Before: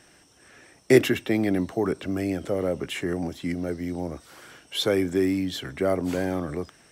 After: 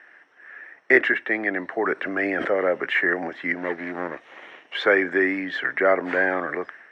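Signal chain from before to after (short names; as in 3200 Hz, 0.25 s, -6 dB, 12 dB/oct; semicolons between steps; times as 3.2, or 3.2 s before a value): 3.56–4.75 minimum comb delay 0.31 ms; synth low-pass 1800 Hz, resonance Q 5.2; AGC gain up to 6 dB; HPF 440 Hz 12 dB/oct; 1.95–2.51 sustainer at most 24 dB/s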